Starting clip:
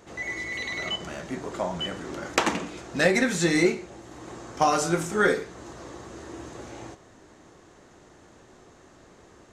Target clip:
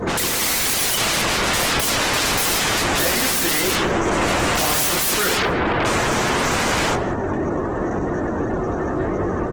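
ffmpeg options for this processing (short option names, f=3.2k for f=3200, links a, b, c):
-filter_complex "[0:a]flanger=delay=20:depth=7.3:speed=0.98,asplit=3[a][b][c];[a]afade=t=out:st=5.28:d=0.02[d];[b]lowpass=f=1.8k:p=1,afade=t=in:st=5.28:d=0.02,afade=t=out:st=5.84:d=0.02[e];[c]afade=t=in:st=5.84:d=0.02[f];[d][e][f]amix=inputs=3:normalize=0,bandreject=f=138:t=h:w=4,bandreject=f=276:t=h:w=4,bandreject=f=414:t=h:w=4,bandreject=f=552:t=h:w=4,bandreject=f=690:t=h:w=4,bandreject=f=828:t=h:w=4,bandreject=f=966:t=h:w=4,bandreject=f=1.104k:t=h:w=4,asplit=2[g][h];[h]alimiter=limit=-21dB:level=0:latency=1:release=367,volume=1dB[i];[g][i]amix=inputs=2:normalize=0,acontrast=66,asoftclip=type=tanh:threshold=-18dB,afftdn=nr=26:nf=-45,aeval=exprs='0.141*sin(PI/2*7.94*val(0)/0.141)':c=same,asplit=2[j][k];[k]adelay=170,lowpass=f=860:p=1,volume=-5dB,asplit=2[l][m];[m]adelay=170,lowpass=f=860:p=1,volume=0.36,asplit=2[n][o];[o]adelay=170,lowpass=f=860:p=1,volume=0.36,asplit=2[p][q];[q]adelay=170,lowpass=f=860:p=1,volume=0.36[r];[j][l][n][p][r]amix=inputs=5:normalize=0" -ar 48000 -c:a libopus -b:a 16k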